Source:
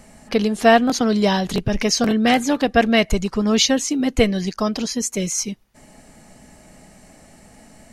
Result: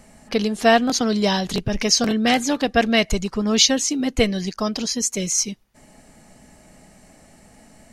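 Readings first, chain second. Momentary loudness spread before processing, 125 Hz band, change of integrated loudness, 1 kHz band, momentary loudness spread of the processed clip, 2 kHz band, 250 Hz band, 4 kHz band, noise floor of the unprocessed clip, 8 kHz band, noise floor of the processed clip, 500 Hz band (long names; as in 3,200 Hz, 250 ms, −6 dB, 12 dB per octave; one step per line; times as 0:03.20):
8 LU, −2.5 dB, −1.0 dB, −2.5 dB, 8 LU, −1.0 dB, −2.5 dB, +2.0 dB, −50 dBFS, +3.0 dB, −52 dBFS, −2.5 dB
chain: dynamic equaliser 5,300 Hz, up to +6 dB, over −36 dBFS, Q 0.74
level −2.5 dB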